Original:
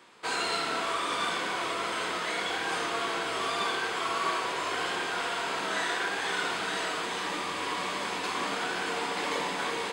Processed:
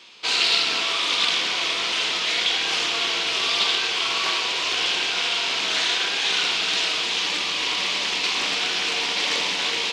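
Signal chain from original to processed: high-order bell 3.9 kHz +15 dB; loudspeaker Doppler distortion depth 0.28 ms

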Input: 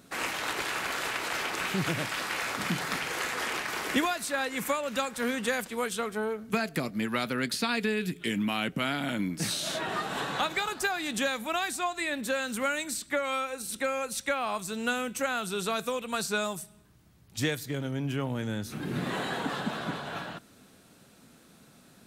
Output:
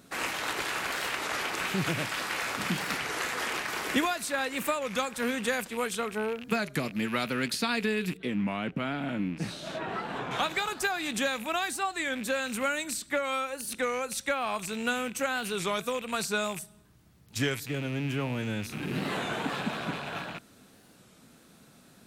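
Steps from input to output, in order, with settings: rattle on loud lows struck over -44 dBFS, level -30 dBFS; 8.17–10.32 s: low-pass 1.3 kHz 6 dB/octave; warped record 33 1/3 rpm, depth 160 cents

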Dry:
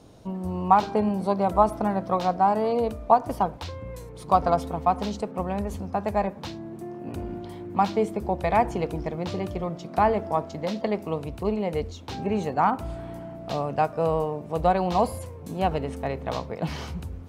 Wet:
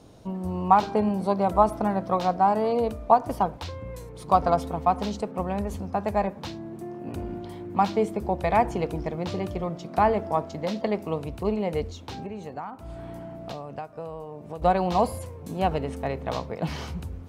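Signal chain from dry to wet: 12.02–14.62 s: compression 8:1, threshold -33 dBFS, peak gain reduction 16.5 dB

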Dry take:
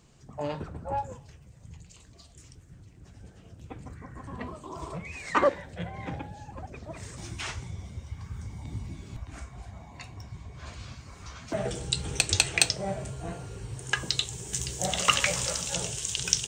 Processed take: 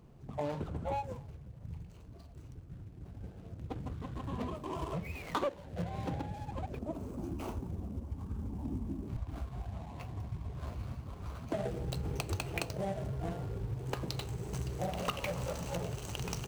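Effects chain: median filter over 25 samples; 6.79–9.08 s: ten-band graphic EQ 125 Hz -10 dB, 250 Hz +10 dB, 2 kHz -8 dB, 4 kHz -6 dB; compression 4:1, threshold -36 dBFS, peak gain reduction 14.5 dB; trim +3 dB

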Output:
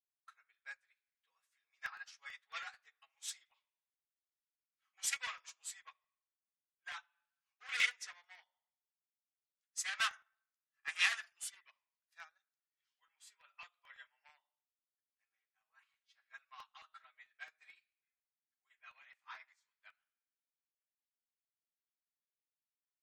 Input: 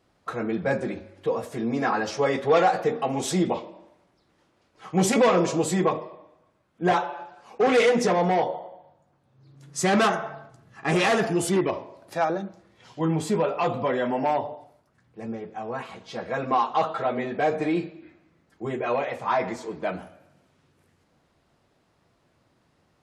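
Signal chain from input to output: high-pass 1.5 kHz 24 dB/octave; crackling interface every 0.11 s, samples 64, repeat, from 0.54 s; upward expansion 2.5:1, over -46 dBFS; trim -2.5 dB

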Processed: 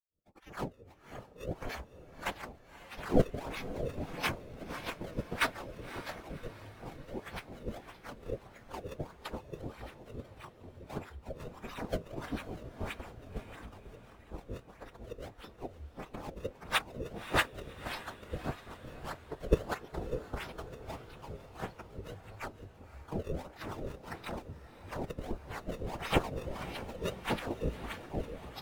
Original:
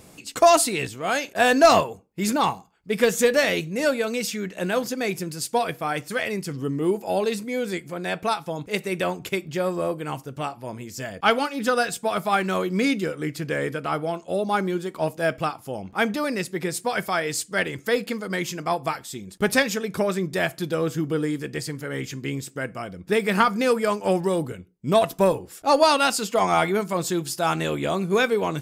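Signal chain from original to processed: fade-in on the opening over 3.29 s; inverse Chebyshev band-stop 190–3000 Hz, stop band 50 dB; bass shelf 310 Hz -4 dB; in parallel at -2 dB: compressor with a negative ratio -46 dBFS, ratio -0.5; on the sum: decimation with a swept rate 24×, swing 160% 1.6 Hz; formant-preserving pitch shift -5 st; short-mantissa float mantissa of 2-bit; harmonic tremolo 6 Hz, depth 70%, crossover 790 Hz; echo that smears into a reverb 547 ms, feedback 63%, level -9 dB; spectral contrast expander 1.5:1; trim +10 dB

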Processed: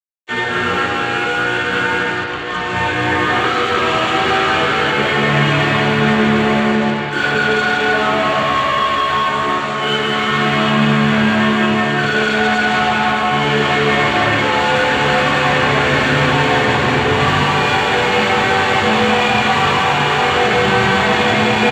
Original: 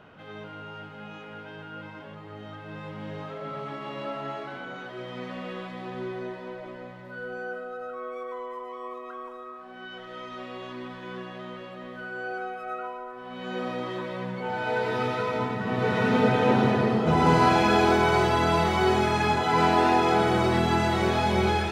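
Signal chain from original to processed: tilt EQ +3.5 dB/octave; expander -36 dBFS; in parallel at +2.5 dB: gain riding within 3 dB 0.5 s; on the sum: formant-preserving pitch shift -9.5 st; high-pass 43 Hz; distance through air 370 m; bouncing-ball echo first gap 180 ms, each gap 0.8×, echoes 5; fuzz box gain 44 dB, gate -45 dBFS; reverberation RT60 0.90 s, pre-delay 3 ms, DRR -4.5 dB; trim -15 dB

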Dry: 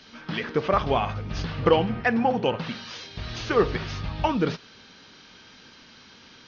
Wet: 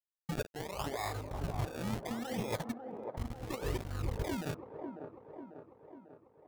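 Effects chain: spectral noise reduction 24 dB; crossover distortion -36.5 dBFS; treble shelf 2.1 kHz -11 dB; compressor with a negative ratio -34 dBFS, ratio -1; saturation -23 dBFS, distortion -17 dB; 0.79–1.44 s: bass shelf 170 Hz -9 dB; decimation with a swept rate 29×, swing 100% 0.71 Hz; feedback echo behind a band-pass 545 ms, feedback 56%, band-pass 500 Hz, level -4 dB; trim -2 dB

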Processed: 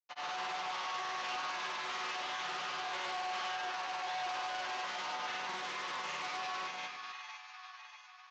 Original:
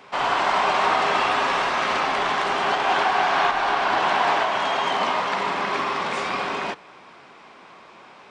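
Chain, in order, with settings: in parallel at +2.5 dB: gain riding; on the sum: crossover distortion -28 dBFS; high-pass 55 Hz; band-stop 970 Hz, Q 28; chord resonator B2 minor, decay 0.8 s; on a send: two-band feedback delay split 900 Hz, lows 109 ms, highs 589 ms, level -9 dB; on the sum: granulator, pitch spread up and down by 0 st; saturation -35 dBFS, distortion -10 dB; Chebyshev low-pass 6.5 kHz, order 6; tilt EQ +2.5 dB/octave; comb 5.7 ms, depth 32%; loudspeaker Doppler distortion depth 0.2 ms

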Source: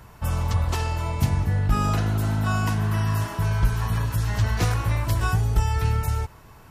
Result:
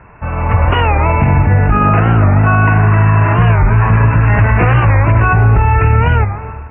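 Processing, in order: Chebyshev low-pass 2.7 kHz, order 8; bass shelf 220 Hz -5 dB; level rider gain up to 11.5 dB; reverberation RT60 1.6 s, pre-delay 21 ms, DRR 10.5 dB; loudness maximiser +10.5 dB; warped record 45 rpm, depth 160 cents; trim -1 dB

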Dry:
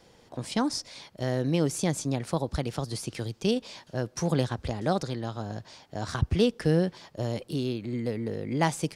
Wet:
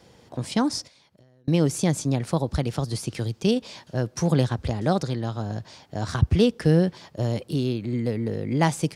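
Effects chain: high-pass 70 Hz; bass shelf 160 Hz +7.5 dB; 0.87–1.48 s: compression 20:1, threshold -57 dBFS, peak gain reduction 36 dB; trim +2.5 dB

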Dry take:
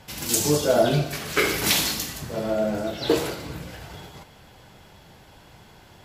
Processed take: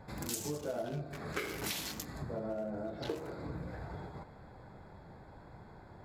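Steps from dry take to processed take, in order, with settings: local Wiener filter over 15 samples; compression 5:1, threshold -35 dBFS, peak gain reduction 18.5 dB; trim -2 dB

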